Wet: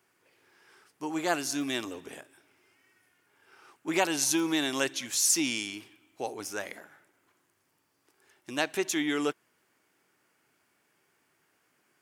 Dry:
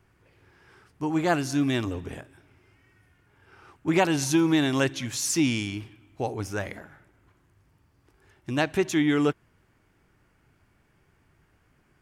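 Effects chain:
high-pass filter 300 Hz 12 dB per octave
high-shelf EQ 3,900 Hz +10.5 dB
level −4.5 dB

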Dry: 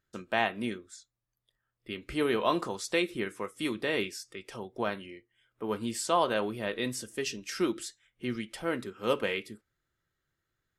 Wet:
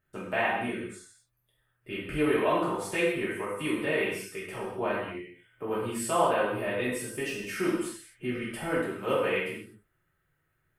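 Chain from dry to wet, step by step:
flat-topped bell 5,000 Hz −12 dB 1.3 octaves
in parallel at +2.5 dB: downward compressor, threshold −40 dBFS, peak gain reduction 17.5 dB
on the sum: reverb whose tail is shaped and stops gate 280 ms falling, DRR −7.5 dB
level −7.5 dB

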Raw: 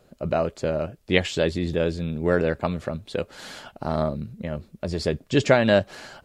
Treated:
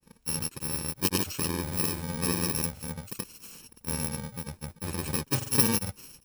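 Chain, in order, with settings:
samples in bit-reversed order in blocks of 64 samples
granular cloud, pitch spread up and down by 0 semitones
level −3.5 dB

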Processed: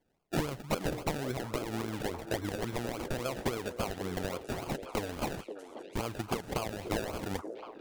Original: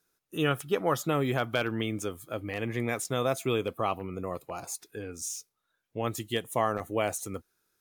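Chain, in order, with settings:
downward compressor 10 to 1, threshold −33 dBFS, peak gain reduction 12.5 dB
transient designer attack +10 dB, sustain +6 dB
sample-and-hold swept by an LFO 33×, swing 60% 3.6 Hz
wrap-around overflow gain 22.5 dB
echo through a band-pass that steps 533 ms, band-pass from 420 Hz, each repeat 1.4 octaves, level −5.5 dB

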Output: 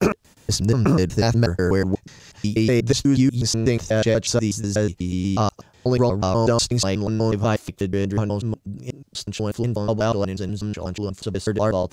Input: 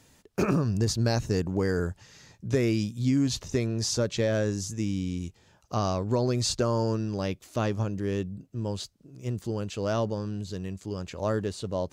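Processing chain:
slices reordered back to front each 122 ms, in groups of 4
level +7.5 dB

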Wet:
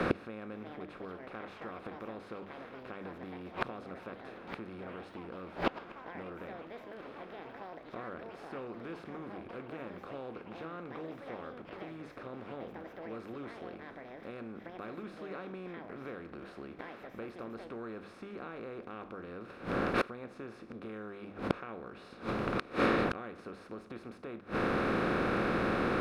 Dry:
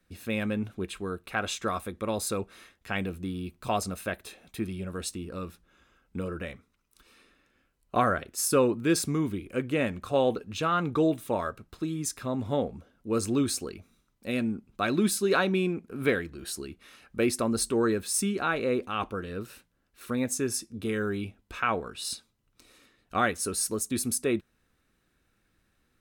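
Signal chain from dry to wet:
compressor on every frequency bin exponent 0.4
mains-hum notches 50/100/150/200/250/300 Hz
delay with pitch and tempo change per echo 448 ms, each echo +6 semitones, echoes 3, each echo −6 dB
downward compressor 2 to 1, threshold −25 dBFS, peak gain reduction 6.5 dB
gate with flip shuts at −20 dBFS, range −25 dB
high-frequency loss of the air 350 metres
level +8 dB

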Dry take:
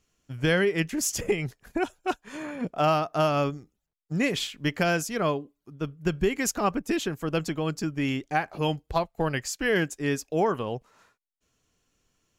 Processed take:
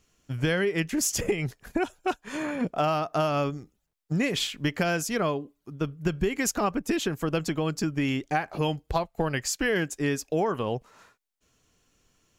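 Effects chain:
downward compressor 3 to 1, threshold −29 dBFS, peak gain reduction 8.5 dB
level +5 dB

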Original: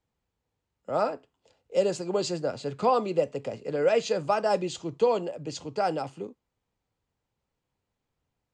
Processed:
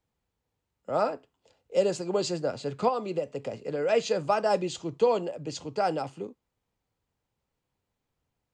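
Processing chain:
0:02.88–0:03.89: downward compressor 2.5 to 1, threshold −28 dBFS, peak gain reduction 7 dB

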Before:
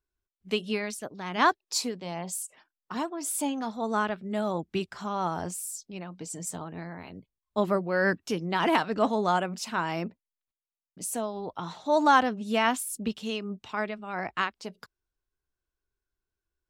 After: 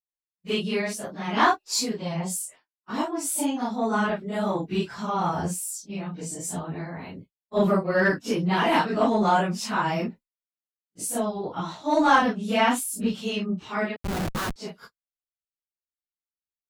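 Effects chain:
random phases in long frames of 100 ms
0:13.96–0:14.56: comparator with hysteresis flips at −31.5 dBFS
dynamic equaliser 170 Hz, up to +4 dB, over −47 dBFS, Q 1.6
downward expander −44 dBFS
in parallel at −5 dB: soft clipping −20.5 dBFS, distortion −13 dB

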